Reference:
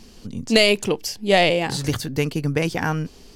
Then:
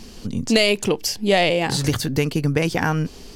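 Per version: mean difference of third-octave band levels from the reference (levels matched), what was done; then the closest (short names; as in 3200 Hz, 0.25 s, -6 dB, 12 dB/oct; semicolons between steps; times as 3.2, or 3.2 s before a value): 3.0 dB: compressor 2:1, threshold -25 dBFS, peak gain reduction 8 dB; gain +6 dB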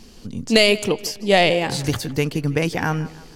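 1.5 dB: tape echo 0.161 s, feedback 50%, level -17 dB, low-pass 4200 Hz; gain +1 dB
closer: second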